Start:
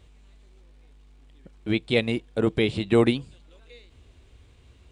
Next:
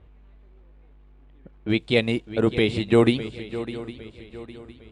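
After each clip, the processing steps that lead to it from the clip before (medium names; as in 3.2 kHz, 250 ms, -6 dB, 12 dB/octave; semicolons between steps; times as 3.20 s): level-controlled noise filter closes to 1.6 kHz, open at -22 dBFS; shuffle delay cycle 808 ms, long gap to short 3:1, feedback 37%, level -14 dB; trim +2 dB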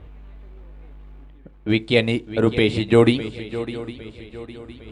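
reverse; upward compressor, threshold -36 dBFS; reverse; FDN reverb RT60 0.33 s, high-frequency decay 0.4×, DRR 15 dB; trim +3 dB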